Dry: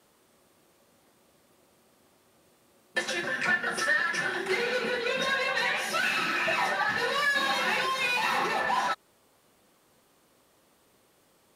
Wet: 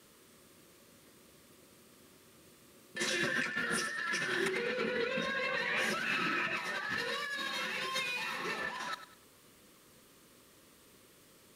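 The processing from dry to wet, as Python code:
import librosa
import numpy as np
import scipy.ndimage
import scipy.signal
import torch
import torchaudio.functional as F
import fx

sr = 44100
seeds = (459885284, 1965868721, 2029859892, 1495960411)

y = fx.high_shelf(x, sr, hz=3000.0, db=-12.0, at=(4.48, 6.57))
y = fx.over_compress(y, sr, threshold_db=-34.0, ratio=-1.0)
y = fx.peak_eq(y, sr, hz=760.0, db=-14.0, octaves=0.61)
y = fx.notch(y, sr, hz=1500.0, q=28.0)
y = fx.echo_feedback(y, sr, ms=99, feedback_pct=33, wet_db=-12.5)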